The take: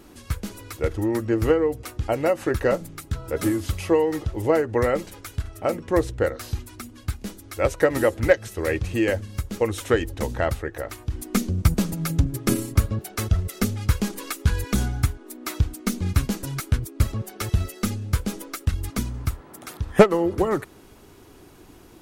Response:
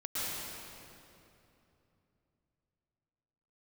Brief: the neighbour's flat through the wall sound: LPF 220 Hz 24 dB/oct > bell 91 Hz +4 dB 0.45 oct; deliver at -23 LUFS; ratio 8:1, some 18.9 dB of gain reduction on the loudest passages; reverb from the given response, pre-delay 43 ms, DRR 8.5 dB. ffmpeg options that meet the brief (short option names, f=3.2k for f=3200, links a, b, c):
-filter_complex "[0:a]acompressor=threshold=-27dB:ratio=8,asplit=2[a][b];[1:a]atrim=start_sample=2205,adelay=43[c];[b][c]afir=irnorm=-1:irlink=0,volume=-14dB[d];[a][d]amix=inputs=2:normalize=0,lowpass=f=220:w=0.5412,lowpass=f=220:w=1.3066,equalizer=f=91:t=o:w=0.45:g=4,volume=12.5dB"